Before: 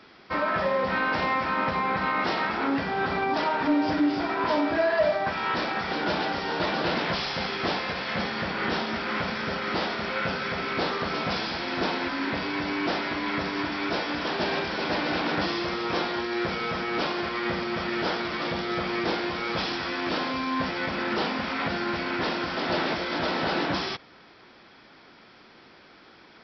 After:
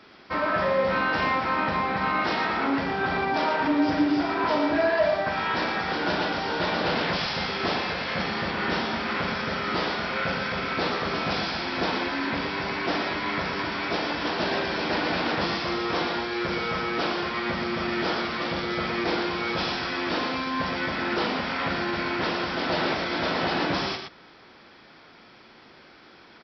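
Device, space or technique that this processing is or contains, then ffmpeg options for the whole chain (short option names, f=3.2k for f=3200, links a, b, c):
slapback doubling: -filter_complex "[0:a]asplit=3[a][b][c];[b]adelay=39,volume=-9dB[d];[c]adelay=117,volume=-6dB[e];[a][d][e]amix=inputs=3:normalize=0"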